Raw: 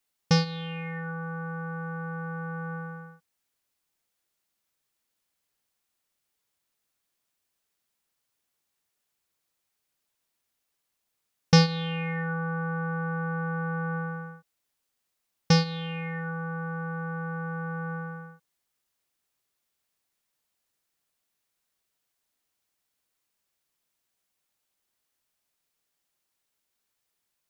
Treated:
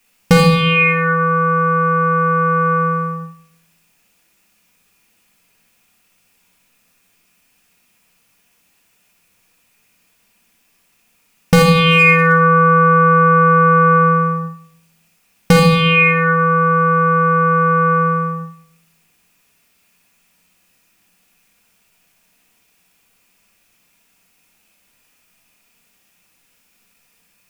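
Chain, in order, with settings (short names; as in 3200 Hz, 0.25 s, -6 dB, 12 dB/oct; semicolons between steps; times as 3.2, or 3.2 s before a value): thirty-one-band EQ 100 Hz +9 dB, 200 Hz +8 dB, 2500 Hz +9 dB, 4000 Hz -4 dB; hard clip -22 dBFS, distortion -6 dB; flutter echo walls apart 10.7 m, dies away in 0.53 s; reverb RT60 0.50 s, pre-delay 4 ms, DRR 1.5 dB; maximiser +18 dB; gain -1 dB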